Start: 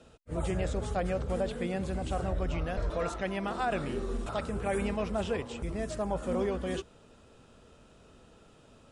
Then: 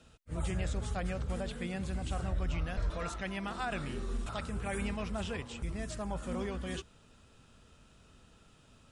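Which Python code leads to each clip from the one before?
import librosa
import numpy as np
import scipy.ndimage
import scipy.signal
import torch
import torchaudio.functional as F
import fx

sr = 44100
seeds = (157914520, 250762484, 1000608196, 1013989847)

y = fx.peak_eq(x, sr, hz=490.0, db=-9.5, octaves=2.0)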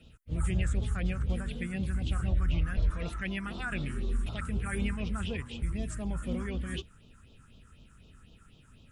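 y = fx.phaser_stages(x, sr, stages=4, low_hz=570.0, high_hz=1600.0, hz=4.0, feedback_pct=45)
y = y * 10.0 ** (3.5 / 20.0)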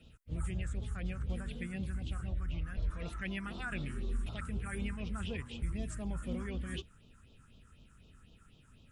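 y = fx.rider(x, sr, range_db=10, speed_s=0.5)
y = y * 10.0 ** (-6.0 / 20.0)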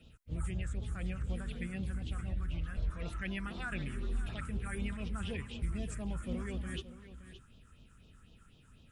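y = x + 10.0 ** (-13.5 / 20.0) * np.pad(x, (int(570 * sr / 1000.0), 0))[:len(x)]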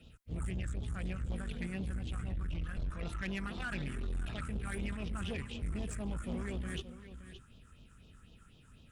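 y = fx.tube_stage(x, sr, drive_db=35.0, bias=0.5)
y = y * 10.0 ** (3.5 / 20.0)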